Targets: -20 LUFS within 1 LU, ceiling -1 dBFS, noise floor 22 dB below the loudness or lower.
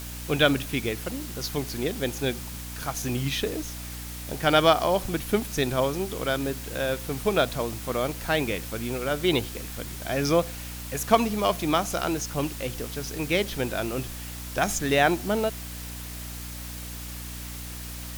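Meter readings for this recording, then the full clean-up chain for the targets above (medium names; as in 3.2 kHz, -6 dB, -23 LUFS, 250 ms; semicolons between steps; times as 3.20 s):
hum 60 Hz; highest harmonic 300 Hz; hum level -37 dBFS; noise floor -37 dBFS; noise floor target -50 dBFS; loudness -27.5 LUFS; peak level -6.5 dBFS; loudness target -20.0 LUFS
-> hum notches 60/120/180/240/300 Hz; noise reduction 13 dB, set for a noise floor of -37 dBFS; trim +7.5 dB; peak limiter -1 dBFS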